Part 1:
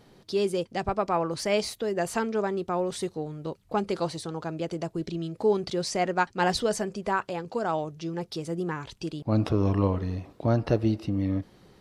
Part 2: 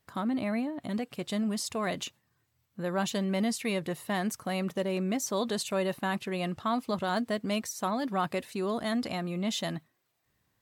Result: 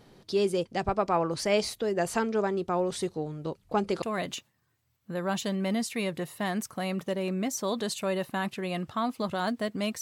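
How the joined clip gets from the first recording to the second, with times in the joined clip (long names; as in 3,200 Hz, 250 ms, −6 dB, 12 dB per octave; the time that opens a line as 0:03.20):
part 1
0:04.02: continue with part 2 from 0:01.71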